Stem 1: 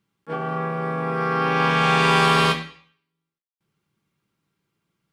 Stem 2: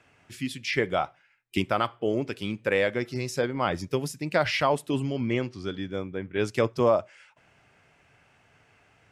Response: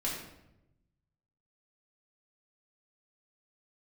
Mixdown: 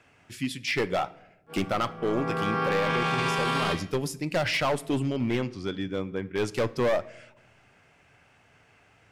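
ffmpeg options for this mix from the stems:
-filter_complex "[0:a]adelay=1200,volume=0.562,afade=t=in:st=1.97:d=0.35:silence=0.251189,afade=t=out:st=3.55:d=0.58:silence=0.266073[s0];[1:a]volume=13.3,asoftclip=hard,volume=0.075,volume=1.06,asplit=2[s1][s2];[s2]volume=0.106[s3];[2:a]atrim=start_sample=2205[s4];[s3][s4]afir=irnorm=-1:irlink=0[s5];[s0][s1][s5]amix=inputs=3:normalize=0,alimiter=limit=0.133:level=0:latency=1:release=14"

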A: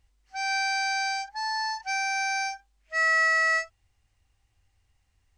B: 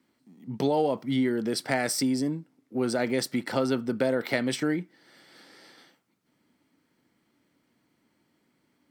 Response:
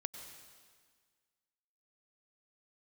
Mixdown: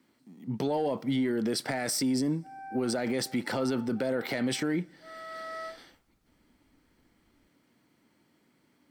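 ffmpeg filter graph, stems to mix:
-filter_complex "[0:a]lowpass=f=1200:w=0.5412,lowpass=f=1200:w=1.3066,adelay=2100,volume=0.596[s0];[1:a]volume=1.26,asplit=3[s1][s2][s3];[s2]volume=0.0708[s4];[s3]apad=whole_len=329616[s5];[s0][s5]sidechaincompress=threshold=0.02:ratio=8:attack=16:release=865[s6];[2:a]atrim=start_sample=2205[s7];[s4][s7]afir=irnorm=-1:irlink=0[s8];[s6][s1][s8]amix=inputs=3:normalize=0,asoftclip=type=tanh:threshold=0.299,alimiter=limit=0.0841:level=0:latency=1:release=25"

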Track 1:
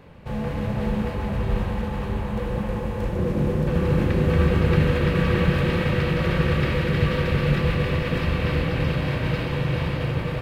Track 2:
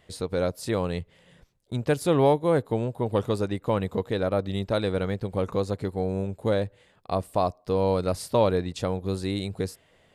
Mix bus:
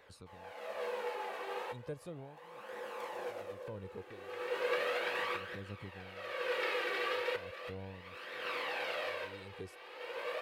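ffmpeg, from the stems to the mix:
-filter_complex "[0:a]highpass=f=480:w=0.5412,highpass=f=480:w=1.3066,volume=0.75[s0];[1:a]acrossover=split=490[s1][s2];[s2]acompressor=threshold=0.0178:ratio=6[s3];[s1][s3]amix=inputs=2:normalize=0,aeval=exprs='val(0)*pow(10,-36*(0.5-0.5*cos(2*PI*0.52*n/s))/20)':c=same,volume=0.224,asplit=2[s4][s5];[s5]apad=whole_len=459445[s6];[s0][s6]sidechaincompress=threshold=0.00126:ratio=5:attack=21:release=437[s7];[s7][s4]amix=inputs=2:normalize=0,flanger=delay=0.5:depth=2.2:regen=36:speed=0.36:shape=triangular"

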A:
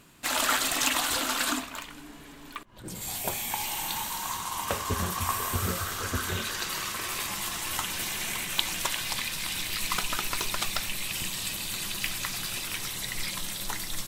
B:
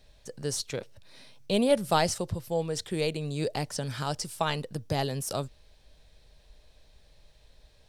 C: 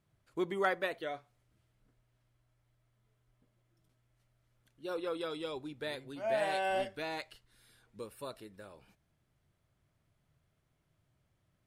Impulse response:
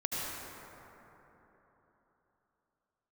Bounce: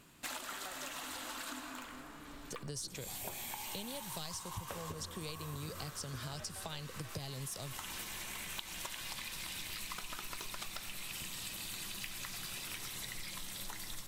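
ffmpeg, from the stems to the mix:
-filter_complex "[0:a]volume=0.473,asplit=2[s0][s1];[s1]volume=0.158[s2];[1:a]acrossover=split=140|3000[s3][s4][s5];[s4]acompressor=threshold=0.00708:ratio=3[s6];[s3][s6][s5]amix=inputs=3:normalize=0,adelay=2250,volume=1.12[s7];[2:a]aeval=exprs='val(0)*pow(10,-18*if(lt(mod(6.1*n/s,1),2*abs(6.1)/1000),1-mod(6.1*n/s,1)/(2*abs(6.1)/1000),(mod(6.1*n/s,1)-2*abs(6.1)/1000)/(1-2*abs(6.1)/1000))/20)':c=same,volume=0.237,asplit=2[s8][s9];[s9]apad=whole_len=620526[s10];[s0][s10]sidechaincompress=threshold=0.00126:ratio=8:attack=5.9:release=1300[s11];[3:a]atrim=start_sample=2205[s12];[s2][s12]afir=irnorm=-1:irlink=0[s13];[s11][s7][s8][s13]amix=inputs=4:normalize=0,acompressor=threshold=0.01:ratio=6"

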